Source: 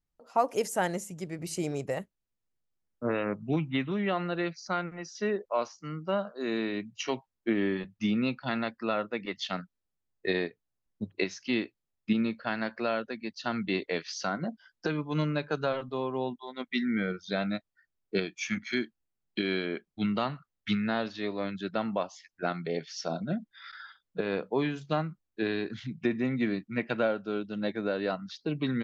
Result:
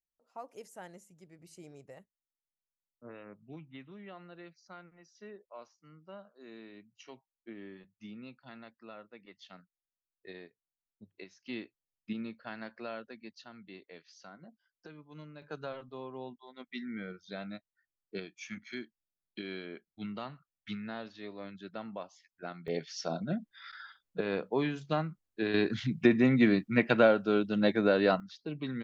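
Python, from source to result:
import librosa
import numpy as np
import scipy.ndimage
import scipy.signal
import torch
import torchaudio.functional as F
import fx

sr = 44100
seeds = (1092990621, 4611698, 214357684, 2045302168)

y = fx.gain(x, sr, db=fx.steps((0.0, -19.0), (11.46, -11.0), (13.44, -20.0), (15.42, -11.0), (22.68, -2.0), (25.54, 5.0), (28.2, -7.0)))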